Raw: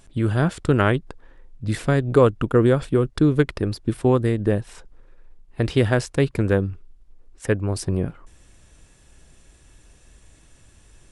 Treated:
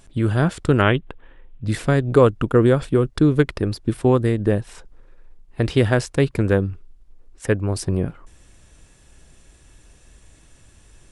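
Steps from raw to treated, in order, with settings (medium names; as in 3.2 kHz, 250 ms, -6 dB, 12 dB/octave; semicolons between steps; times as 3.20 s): 0.82–1.65 s: resonant high shelf 4 kHz -9 dB, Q 3; trim +1.5 dB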